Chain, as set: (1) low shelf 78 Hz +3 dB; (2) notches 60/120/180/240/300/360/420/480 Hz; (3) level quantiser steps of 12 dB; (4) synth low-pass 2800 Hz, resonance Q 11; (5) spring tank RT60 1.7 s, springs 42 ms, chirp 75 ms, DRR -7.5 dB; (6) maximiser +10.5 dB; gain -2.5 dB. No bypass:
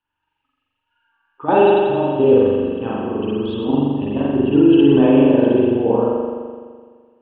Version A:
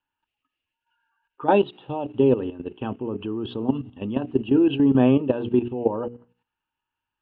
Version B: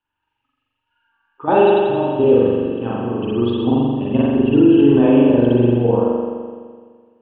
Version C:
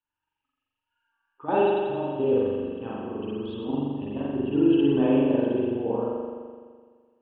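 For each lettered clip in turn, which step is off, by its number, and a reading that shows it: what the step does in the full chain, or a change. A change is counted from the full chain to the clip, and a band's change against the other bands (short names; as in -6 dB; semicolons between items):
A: 5, crest factor change +5.5 dB; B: 2, 125 Hz band +3.5 dB; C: 6, crest factor change +3.5 dB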